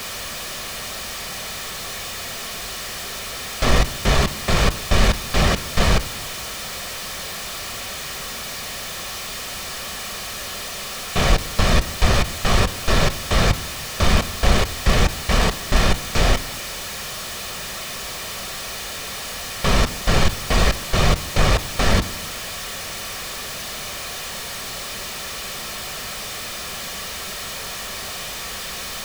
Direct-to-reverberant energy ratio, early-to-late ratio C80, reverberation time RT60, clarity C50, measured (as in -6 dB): 10.5 dB, 22.5 dB, 0.75 s, 19.5 dB